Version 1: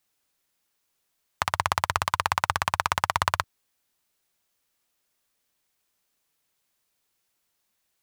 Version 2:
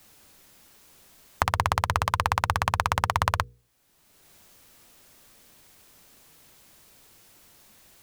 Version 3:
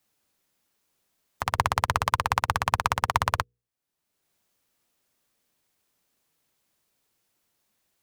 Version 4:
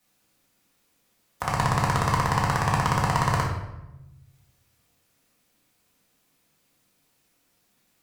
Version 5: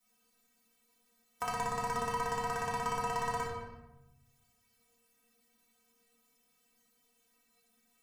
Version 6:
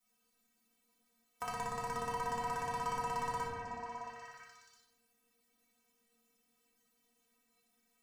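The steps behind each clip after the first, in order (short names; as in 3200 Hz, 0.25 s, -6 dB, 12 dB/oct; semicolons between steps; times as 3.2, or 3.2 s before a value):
low shelf 490 Hz +9 dB; notches 60/120/180/240/300/360/420/480 Hz; three-band squash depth 70%; gain -1.5 dB
low shelf 78 Hz -8.5 dB; limiter -13.5 dBFS, peak gain reduction 11.5 dB; upward expander 2.5:1, over -47 dBFS; gain +9 dB
one-sided clip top -18.5 dBFS, bottom -9.5 dBFS; limiter -13.5 dBFS, peak gain reduction 4 dB; shoebox room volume 370 m³, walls mixed, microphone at 1.9 m; gain +2 dB
compressor 3:1, threshold -27 dBFS, peak gain reduction 7 dB; metallic resonator 230 Hz, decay 0.22 s, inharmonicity 0.008; gain +7 dB
delay with a stepping band-pass 0.334 s, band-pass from 280 Hz, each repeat 1.4 oct, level 0 dB; gain -4.5 dB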